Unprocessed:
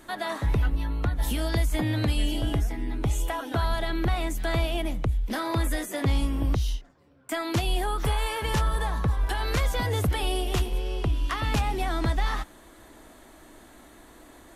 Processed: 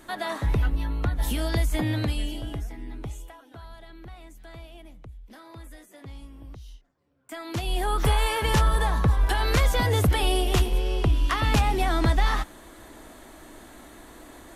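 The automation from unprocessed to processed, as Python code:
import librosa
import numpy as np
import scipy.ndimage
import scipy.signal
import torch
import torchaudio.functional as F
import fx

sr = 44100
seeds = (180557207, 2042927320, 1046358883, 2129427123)

y = fx.gain(x, sr, db=fx.line((1.92, 0.5), (2.46, -7.0), (2.99, -7.0), (3.39, -18.0), (6.6, -18.0), (7.47, -6.5), (7.97, 4.0)))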